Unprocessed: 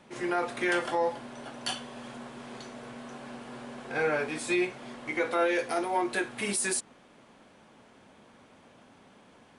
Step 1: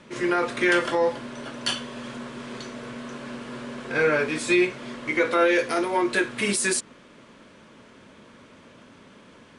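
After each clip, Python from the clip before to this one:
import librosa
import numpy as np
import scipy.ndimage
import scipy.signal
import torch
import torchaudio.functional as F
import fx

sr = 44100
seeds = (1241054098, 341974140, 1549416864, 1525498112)

y = scipy.signal.sosfilt(scipy.signal.butter(2, 8600.0, 'lowpass', fs=sr, output='sos'), x)
y = fx.peak_eq(y, sr, hz=770.0, db=-14.0, octaves=0.26)
y = y * librosa.db_to_amplitude(7.5)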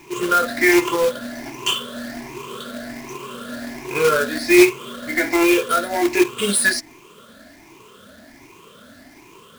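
y = fx.spec_ripple(x, sr, per_octave=0.72, drift_hz=1.3, depth_db=21)
y = y + 0.36 * np.pad(y, (int(2.9 * sr / 1000.0), 0))[:len(y)]
y = fx.quant_companded(y, sr, bits=4)
y = y * librosa.db_to_amplitude(-1.0)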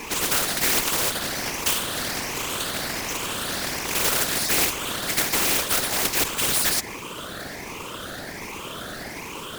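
y = fx.tube_stage(x, sr, drive_db=6.0, bias=0.75)
y = fx.whisperise(y, sr, seeds[0])
y = fx.spectral_comp(y, sr, ratio=4.0)
y = y * librosa.db_to_amplitude(-3.0)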